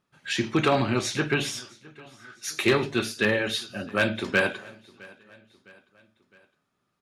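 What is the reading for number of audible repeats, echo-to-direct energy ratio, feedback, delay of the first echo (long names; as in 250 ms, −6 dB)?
2, −22.5 dB, 50%, 660 ms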